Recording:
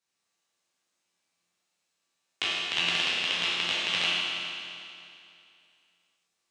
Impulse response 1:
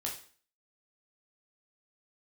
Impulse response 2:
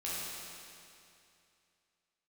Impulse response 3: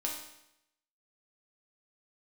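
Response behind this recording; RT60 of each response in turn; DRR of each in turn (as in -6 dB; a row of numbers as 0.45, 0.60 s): 2; 0.45, 2.6, 0.80 s; -2.0, -9.0, -2.0 dB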